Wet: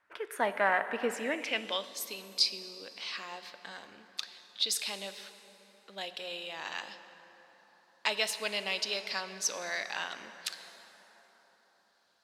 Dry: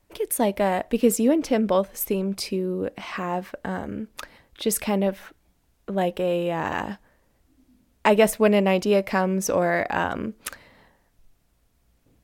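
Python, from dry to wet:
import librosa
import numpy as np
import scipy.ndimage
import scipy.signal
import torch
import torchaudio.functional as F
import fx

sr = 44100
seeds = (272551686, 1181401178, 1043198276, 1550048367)

y = fx.rev_plate(x, sr, seeds[0], rt60_s=4.7, hf_ratio=0.5, predelay_ms=0, drr_db=9.5)
y = fx.filter_sweep_bandpass(y, sr, from_hz=1500.0, to_hz=4300.0, start_s=1.07, end_s=1.96, q=3.4)
y = F.gain(torch.from_numpy(y), 8.5).numpy()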